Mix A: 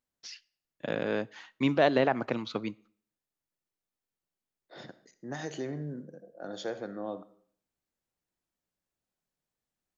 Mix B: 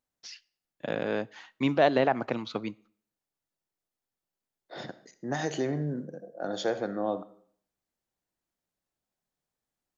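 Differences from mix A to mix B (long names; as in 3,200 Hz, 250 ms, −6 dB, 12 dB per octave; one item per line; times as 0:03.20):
second voice +6.0 dB
master: add parametric band 750 Hz +3 dB 0.58 octaves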